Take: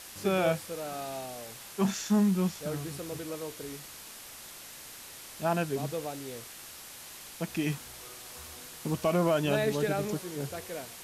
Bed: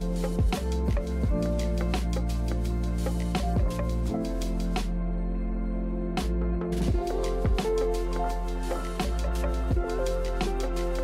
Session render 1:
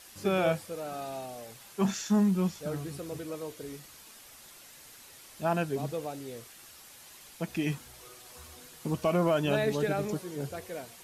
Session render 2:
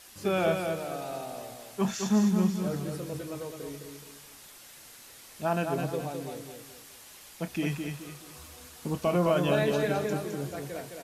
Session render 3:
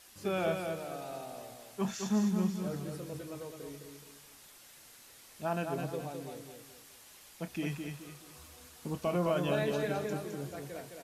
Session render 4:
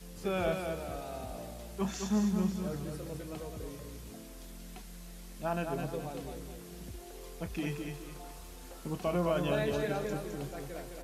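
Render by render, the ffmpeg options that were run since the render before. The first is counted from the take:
ffmpeg -i in.wav -af "afftdn=noise_reduction=7:noise_floor=-47" out.wav
ffmpeg -i in.wav -filter_complex "[0:a]asplit=2[link_01][link_02];[link_02]adelay=28,volume=-12.5dB[link_03];[link_01][link_03]amix=inputs=2:normalize=0,aecho=1:1:212|424|636|848:0.531|0.191|0.0688|0.0248" out.wav
ffmpeg -i in.wav -af "volume=-5.5dB" out.wav
ffmpeg -i in.wav -i bed.wav -filter_complex "[1:a]volume=-20dB[link_01];[0:a][link_01]amix=inputs=2:normalize=0" out.wav

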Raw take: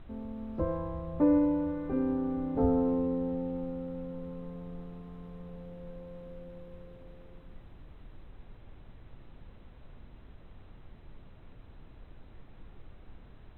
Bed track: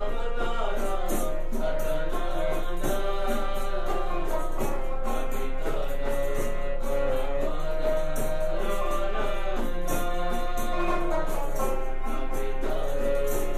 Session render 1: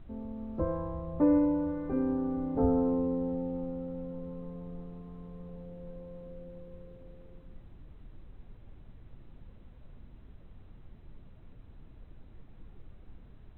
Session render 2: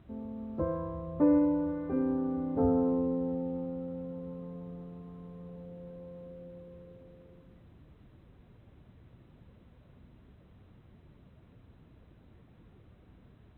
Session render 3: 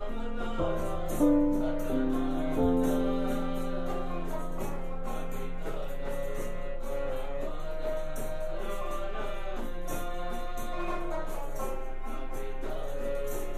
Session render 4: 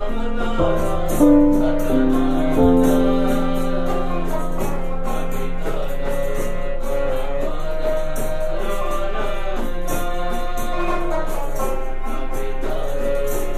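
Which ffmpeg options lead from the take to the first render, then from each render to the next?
ffmpeg -i in.wav -af "afftdn=noise_reduction=6:noise_floor=-53" out.wav
ffmpeg -i in.wav -af "highpass=74,bandreject=frequency=830:width=21" out.wav
ffmpeg -i in.wav -i bed.wav -filter_complex "[1:a]volume=-7dB[link_01];[0:a][link_01]amix=inputs=2:normalize=0" out.wav
ffmpeg -i in.wav -af "volume=12dB,alimiter=limit=-3dB:level=0:latency=1" out.wav

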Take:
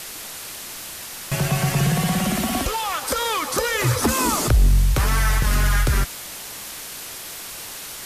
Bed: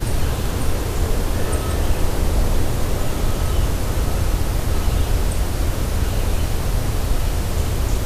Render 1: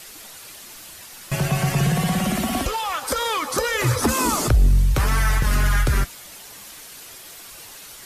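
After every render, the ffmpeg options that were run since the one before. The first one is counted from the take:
ffmpeg -i in.wav -af "afftdn=noise_reduction=8:noise_floor=-35" out.wav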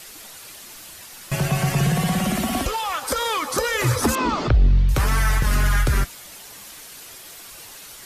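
ffmpeg -i in.wav -filter_complex "[0:a]asettb=1/sr,asplit=3[link_01][link_02][link_03];[link_01]atrim=end=4.154[link_04];[link_02]atrim=start=4.15:end=4.89,asetpts=PTS-STARTPTS,afade=type=in:duration=0.004:curve=qsin,afade=type=out:start_time=0.736:duration=0.004:curve=qsin,lowpass=frequency=4200:width=0.5412,lowpass=frequency=4200:width=1.3066[link_05];[link_03]atrim=start=4.886[link_06];[link_04][link_05]acrossfade=duration=0.004:curve1=hsin:curve2=qsin[link_07];[link_07][link_06]acrossfade=duration=0.004:curve1=qsin:curve2=hsin" out.wav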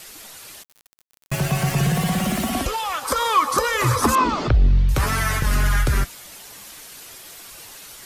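ffmpeg -i in.wav -filter_complex "[0:a]asplit=3[link_01][link_02][link_03];[link_01]afade=type=out:start_time=0.62:duration=0.02[link_04];[link_02]aeval=exprs='val(0)*gte(abs(val(0)),0.0299)':channel_layout=same,afade=type=in:start_time=0.62:duration=0.02,afade=type=out:start_time=2.49:duration=0.02[link_05];[link_03]afade=type=in:start_time=2.49:duration=0.02[link_06];[link_04][link_05][link_06]amix=inputs=3:normalize=0,asettb=1/sr,asplit=3[link_07][link_08][link_09];[link_07]atrim=end=3.054[link_10];[link_08]atrim=start=3.05:end=4.24,asetpts=PTS-STARTPTS,afade=type=in:duration=0.004:curve=qsin,afade=type=out:start_time=1.186:duration=0.004:curve=qsin,equalizer=frequency=1100:width=4:gain=11.5[link_11];[link_09]atrim=start=4.236[link_12];[link_10][link_11]acrossfade=duration=0.004:curve1=hsin:curve2=qsin[link_13];[link_13][link_12]acrossfade=duration=0.004:curve1=qsin:curve2=hsin,asettb=1/sr,asplit=3[link_14][link_15][link_16];[link_14]atrim=end=5.014[link_17];[link_15]atrim=start=5.01:end=5.42,asetpts=PTS-STARTPTS,afade=type=in:duration=0.004:curve=qsin,afade=type=out:start_time=0.406:duration=0.004:curve=qsin,asplit=2[link_18][link_19];[link_19]adelay=12,volume=-3dB[link_20];[link_18][link_20]amix=inputs=2:normalize=0,atrim=end_sample=18081[link_21];[link_16]atrim=start=5.416[link_22];[link_17][link_21]acrossfade=duration=0.004:curve1=hsin:curve2=qsin[link_23];[link_23][link_22]acrossfade=duration=0.004:curve1=qsin:curve2=hsin" out.wav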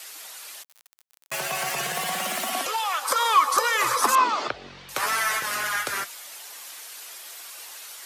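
ffmpeg -i in.wav -af "highpass=640" out.wav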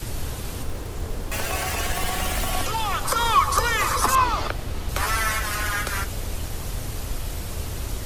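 ffmpeg -i in.wav -i bed.wav -filter_complex "[1:a]volume=-10dB[link_01];[0:a][link_01]amix=inputs=2:normalize=0" out.wav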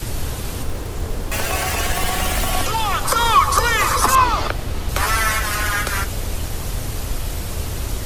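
ffmpeg -i in.wav -af "volume=5dB,alimiter=limit=-3dB:level=0:latency=1" out.wav

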